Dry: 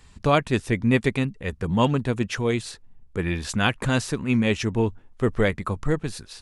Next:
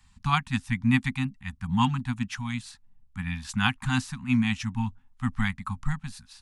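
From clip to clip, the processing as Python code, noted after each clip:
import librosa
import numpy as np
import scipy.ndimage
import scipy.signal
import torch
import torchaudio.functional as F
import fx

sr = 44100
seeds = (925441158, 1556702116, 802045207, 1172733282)

y = scipy.signal.sosfilt(scipy.signal.cheby1(5, 1.0, [260.0, 770.0], 'bandstop', fs=sr, output='sos'), x)
y = fx.upward_expand(y, sr, threshold_db=-34.0, expansion=1.5)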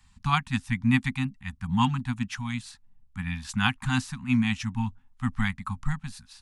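y = x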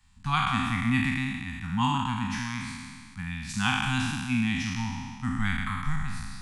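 y = fx.spec_trails(x, sr, decay_s=1.89)
y = y * 10.0 ** (-4.5 / 20.0)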